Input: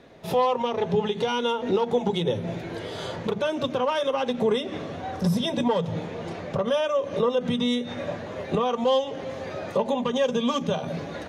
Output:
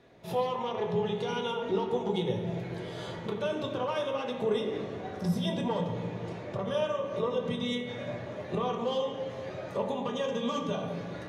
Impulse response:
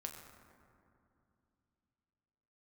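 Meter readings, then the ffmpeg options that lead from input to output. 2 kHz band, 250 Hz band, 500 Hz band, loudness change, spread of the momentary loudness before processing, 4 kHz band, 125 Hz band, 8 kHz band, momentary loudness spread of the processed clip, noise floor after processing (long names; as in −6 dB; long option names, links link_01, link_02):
−6.0 dB, −6.5 dB, −6.5 dB, −6.5 dB, 10 LU, −7.5 dB, −4.0 dB, −8.0 dB, 7 LU, −41 dBFS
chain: -filter_complex "[1:a]atrim=start_sample=2205,asetrate=70560,aresample=44100[link_01];[0:a][link_01]afir=irnorm=-1:irlink=0"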